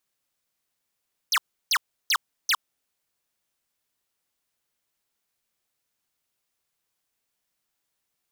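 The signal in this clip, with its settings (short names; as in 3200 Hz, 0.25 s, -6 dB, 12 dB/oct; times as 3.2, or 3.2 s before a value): burst of laser zaps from 6600 Hz, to 930 Hz, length 0.06 s square, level -21 dB, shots 4, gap 0.33 s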